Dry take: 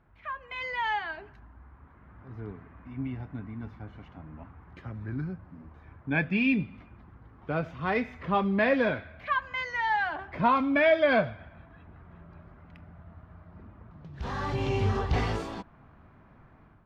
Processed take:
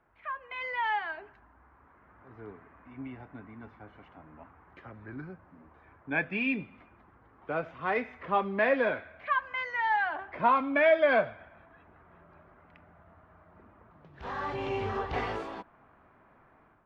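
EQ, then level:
three-way crossover with the lows and the highs turned down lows −13 dB, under 310 Hz, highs −12 dB, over 3,100 Hz
0.0 dB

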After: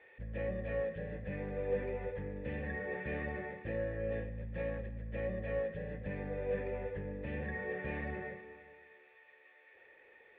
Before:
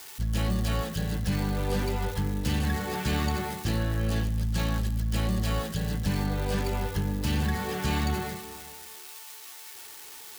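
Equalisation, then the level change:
formant resonators in series e
+5.0 dB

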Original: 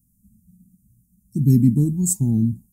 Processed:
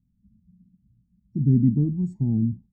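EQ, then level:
Savitzky-Golay smoothing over 41 samples
high-frequency loss of the air 170 metres
parametric band 1,000 Hz −3 dB 0.24 octaves
−3.5 dB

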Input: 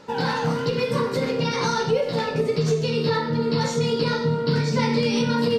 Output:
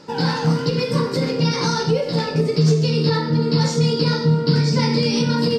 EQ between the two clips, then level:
thirty-one-band graphic EQ 160 Hz +9 dB, 315 Hz +9 dB, 5,000 Hz +11 dB, 8,000 Hz +4 dB
0.0 dB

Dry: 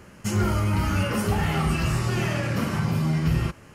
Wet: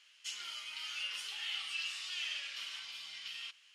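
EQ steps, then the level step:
four-pole ladder band-pass 3,700 Hz, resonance 60%
+5.5 dB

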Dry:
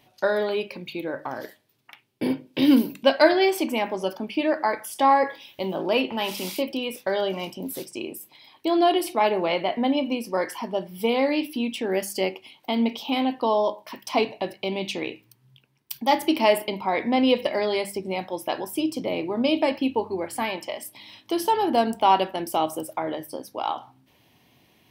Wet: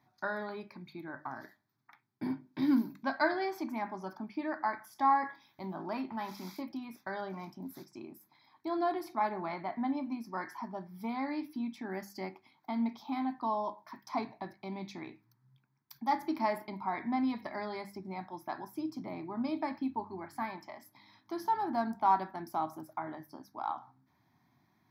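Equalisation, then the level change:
moving average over 5 samples
high-pass filter 98 Hz
phaser with its sweep stopped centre 1,200 Hz, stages 4
−6.0 dB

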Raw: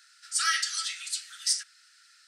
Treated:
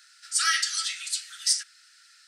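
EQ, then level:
high-pass filter 1,100 Hz 12 dB per octave
+3.0 dB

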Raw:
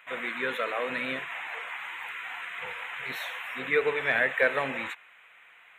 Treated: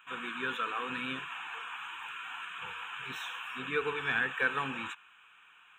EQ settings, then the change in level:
phaser with its sweep stopped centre 3,000 Hz, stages 8
0.0 dB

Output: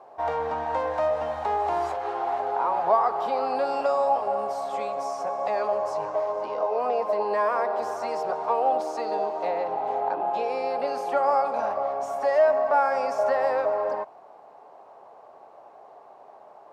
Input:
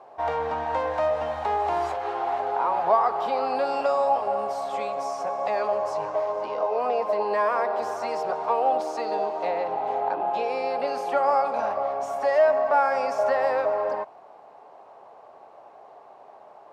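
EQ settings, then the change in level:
low-shelf EQ 140 Hz −3 dB
parametric band 2,800 Hz −3.5 dB 1.6 octaves
0.0 dB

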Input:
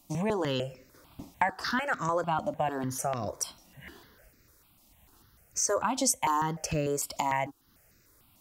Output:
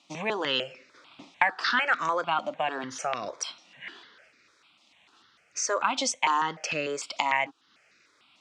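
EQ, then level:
high-frequency loss of the air 84 metres
loudspeaker in its box 260–9,000 Hz, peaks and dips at 1,300 Hz +4 dB, 2,400 Hz +4 dB, 3,600 Hz +3 dB
parametric band 3,000 Hz +11.5 dB 2.4 octaves
−2.0 dB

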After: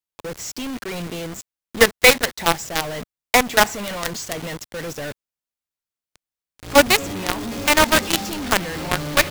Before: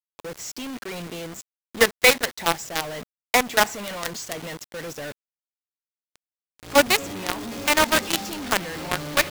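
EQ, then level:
low-shelf EQ 130 Hz +7 dB
+3.5 dB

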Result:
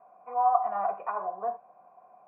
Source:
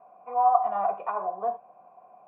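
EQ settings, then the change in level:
low-pass with resonance 1,900 Hz, resonance Q 1.7
−4.0 dB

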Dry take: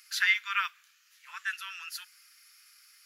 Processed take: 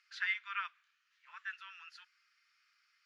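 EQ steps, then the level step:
head-to-tape spacing loss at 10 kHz 41 dB
high-shelf EQ 3,500 Hz +10 dB
−4.0 dB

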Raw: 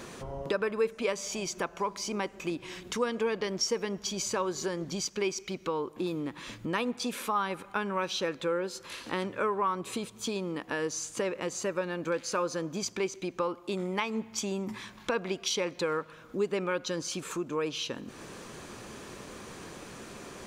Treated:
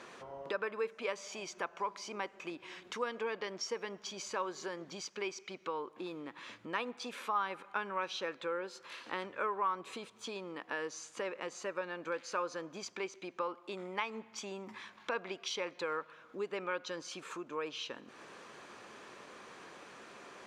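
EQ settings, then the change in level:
resonant band-pass 1,400 Hz, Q 0.5
−3.5 dB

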